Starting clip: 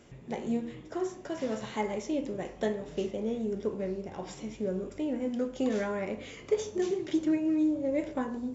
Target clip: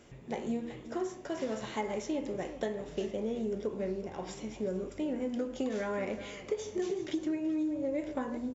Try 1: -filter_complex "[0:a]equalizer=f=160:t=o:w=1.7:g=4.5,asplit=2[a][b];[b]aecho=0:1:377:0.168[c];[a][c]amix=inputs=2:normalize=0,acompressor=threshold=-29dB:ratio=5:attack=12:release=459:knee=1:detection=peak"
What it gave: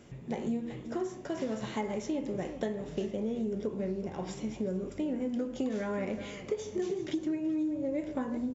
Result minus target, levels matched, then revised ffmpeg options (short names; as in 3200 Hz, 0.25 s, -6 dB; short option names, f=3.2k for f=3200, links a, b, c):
125 Hz band +3.5 dB
-filter_complex "[0:a]equalizer=f=160:t=o:w=1.7:g=-2.5,asplit=2[a][b];[b]aecho=0:1:377:0.168[c];[a][c]amix=inputs=2:normalize=0,acompressor=threshold=-29dB:ratio=5:attack=12:release=459:knee=1:detection=peak"